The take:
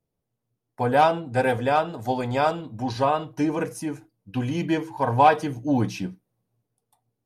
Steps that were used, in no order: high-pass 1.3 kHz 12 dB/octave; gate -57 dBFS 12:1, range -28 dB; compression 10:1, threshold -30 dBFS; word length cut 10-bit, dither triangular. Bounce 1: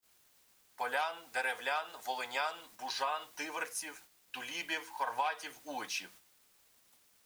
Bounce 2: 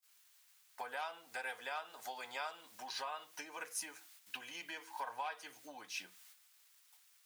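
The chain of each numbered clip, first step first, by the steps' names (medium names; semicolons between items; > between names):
high-pass > word length cut > gate > compression; word length cut > gate > compression > high-pass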